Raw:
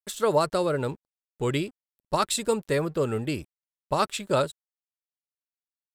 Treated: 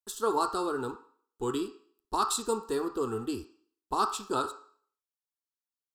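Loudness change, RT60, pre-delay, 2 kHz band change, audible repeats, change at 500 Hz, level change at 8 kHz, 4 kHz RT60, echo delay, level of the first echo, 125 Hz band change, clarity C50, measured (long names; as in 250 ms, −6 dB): −4.5 dB, 0.50 s, 13 ms, −9.0 dB, no echo audible, −7.0 dB, −2.5 dB, 0.50 s, no echo audible, no echo audible, −14.5 dB, 10.5 dB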